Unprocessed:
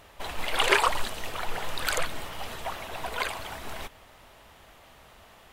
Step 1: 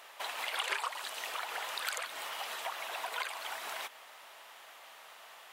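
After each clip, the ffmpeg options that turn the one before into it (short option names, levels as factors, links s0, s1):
-af "highpass=770,acompressor=threshold=0.0112:ratio=3,volume=1.33"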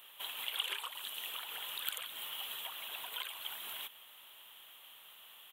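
-af "firequalizer=gain_entry='entry(100,0);entry(280,-9);entry(680,-19);entry(960,-14);entry(2100,-14);entry(3200,1);entry(4800,-22);entry(8700,-7);entry(13000,4)':delay=0.05:min_phase=1,volume=1.58"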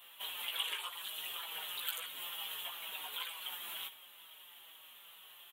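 -filter_complex "[0:a]asplit=2[s0][s1];[s1]aecho=0:1:16|78:0.631|0.2[s2];[s0][s2]amix=inputs=2:normalize=0,asplit=2[s3][s4];[s4]adelay=5.3,afreqshift=-2.2[s5];[s3][s5]amix=inputs=2:normalize=1,volume=1.19"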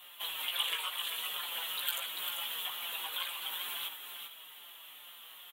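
-af "afreqshift=45,aecho=1:1:393:0.473,volume=1.58"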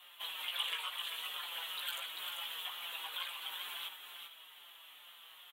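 -filter_complex "[0:a]asplit=2[s0][s1];[s1]highpass=f=720:p=1,volume=2.24,asoftclip=type=tanh:threshold=0.224[s2];[s0][s2]amix=inputs=2:normalize=0,lowpass=f=4400:p=1,volume=0.501,volume=0.531"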